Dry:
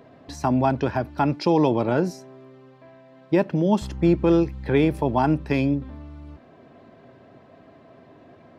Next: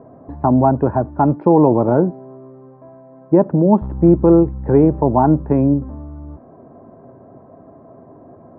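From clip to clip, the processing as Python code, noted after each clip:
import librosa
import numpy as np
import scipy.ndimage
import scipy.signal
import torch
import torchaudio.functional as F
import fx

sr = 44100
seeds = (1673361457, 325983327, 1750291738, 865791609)

y = scipy.signal.sosfilt(scipy.signal.butter(4, 1100.0, 'lowpass', fs=sr, output='sos'), x)
y = F.gain(torch.from_numpy(y), 7.5).numpy()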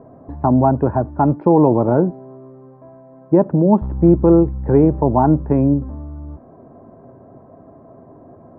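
y = fx.low_shelf(x, sr, hz=70.0, db=6.5)
y = F.gain(torch.from_numpy(y), -1.0).numpy()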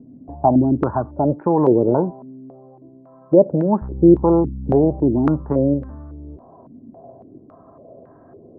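y = fx.filter_held_lowpass(x, sr, hz=3.6, low_hz=250.0, high_hz=1600.0)
y = F.gain(torch.from_numpy(y), -5.5).numpy()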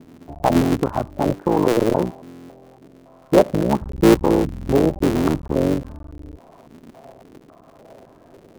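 y = fx.cycle_switch(x, sr, every=3, mode='muted')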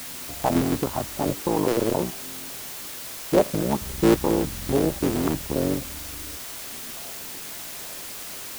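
y = fx.dmg_noise_colour(x, sr, seeds[0], colour='white', level_db=-31.0)
y = F.gain(torch.from_numpy(y), -5.5).numpy()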